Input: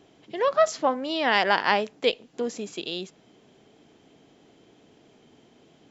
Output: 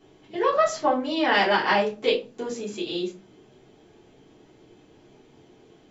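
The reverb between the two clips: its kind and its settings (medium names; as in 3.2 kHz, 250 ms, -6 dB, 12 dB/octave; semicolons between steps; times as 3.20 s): simulated room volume 120 m³, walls furnished, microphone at 3.4 m; trim -7 dB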